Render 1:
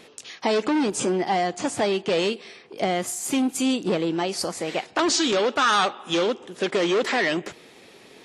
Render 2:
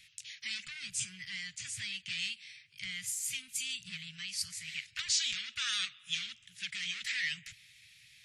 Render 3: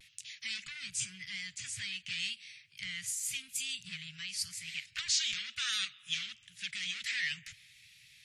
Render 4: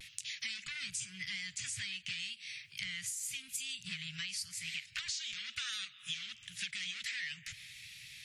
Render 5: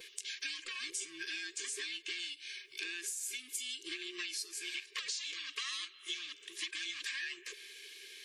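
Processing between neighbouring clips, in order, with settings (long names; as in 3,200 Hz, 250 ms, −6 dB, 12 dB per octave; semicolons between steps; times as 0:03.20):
elliptic band-stop filter 120–2,100 Hz, stop band 50 dB; level −5.5 dB
pitch vibrato 0.91 Hz 48 cents
downward compressor 12 to 1, threshold −45 dBFS, peak gain reduction 19 dB; level +8 dB
frequency inversion band by band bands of 500 Hz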